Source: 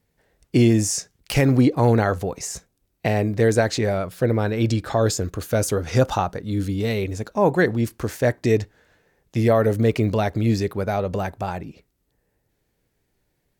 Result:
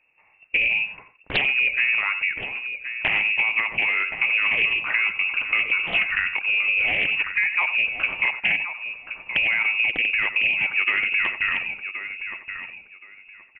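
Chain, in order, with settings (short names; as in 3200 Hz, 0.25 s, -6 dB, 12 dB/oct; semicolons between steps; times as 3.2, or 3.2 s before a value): in parallel at -3 dB: limiter -15 dBFS, peak gain reduction 7.5 dB; on the sum: compressor 10:1, threshold -19 dBFS, peak gain reduction 10 dB; on a send: feedback echo 1.073 s, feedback 20%, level -10 dB; on the sum: inverted band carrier 2700 Hz; echo 91 ms -12 dB; Doppler distortion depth 0.45 ms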